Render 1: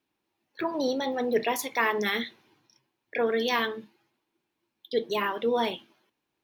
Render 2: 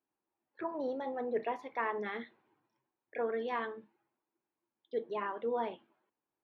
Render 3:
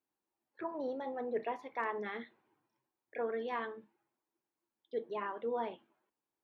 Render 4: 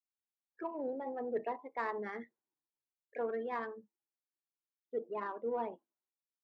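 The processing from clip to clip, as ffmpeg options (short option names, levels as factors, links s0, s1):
-af "lowpass=1300,lowshelf=f=320:g=-9.5,volume=0.562"
-af "asoftclip=type=hard:threshold=0.0794,volume=0.794"
-af "afftdn=nr=23:nf=-48,adynamicsmooth=sensitivity=4:basefreq=2600"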